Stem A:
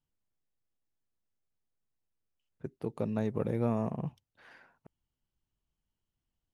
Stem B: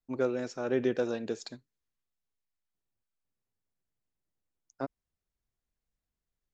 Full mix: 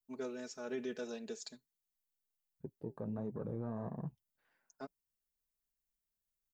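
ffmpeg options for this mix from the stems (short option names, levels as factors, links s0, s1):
-filter_complex "[0:a]afwtdn=0.00631,flanger=delay=4.6:depth=4.8:regen=-64:speed=1.5:shape=sinusoidal,volume=0.841[s0];[1:a]aemphasis=mode=production:type=75kf,aecho=1:1:4.7:0.96,volume=0.2[s1];[s0][s1]amix=inputs=2:normalize=0,alimiter=level_in=2.24:limit=0.0631:level=0:latency=1:release=16,volume=0.447"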